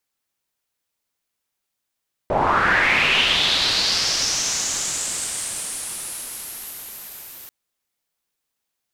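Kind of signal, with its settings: swept filtered noise white, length 5.19 s lowpass, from 580 Hz, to 14 kHz, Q 4, linear, gain ramp -32 dB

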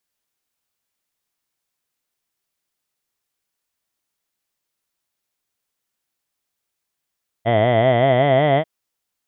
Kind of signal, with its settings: formant vowel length 1.19 s, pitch 109 Hz, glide +5.5 st, vibrato depth 1.3 st, F1 660 Hz, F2 2 kHz, F3 3.2 kHz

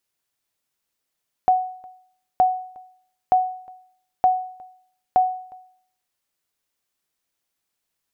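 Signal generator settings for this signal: sonar ping 741 Hz, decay 0.59 s, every 0.92 s, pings 5, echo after 0.36 s, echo -26.5 dB -9.5 dBFS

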